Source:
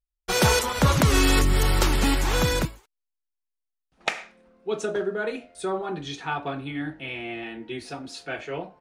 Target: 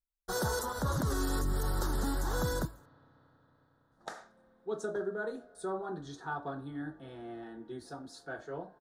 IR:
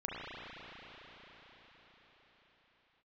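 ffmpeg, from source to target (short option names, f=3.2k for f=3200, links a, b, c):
-filter_complex "[0:a]firequalizer=gain_entry='entry(1600,0);entry(2400,-28);entry(3700,-5);entry(13000,2)':delay=0.05:min_phase=1,alimiter=limit=-15.5dB:level=0:latency=1:release=29,asplit=2[a][b];[1:a]atrim=start_sample=2205,lowshelf=f=180:g=-7.5[c];[b][c]afir=irnorm=-1:irlink=0,volume=-26dB[d];[a][d]amix=inputs=2:normalize=0,volume=-8.5dB"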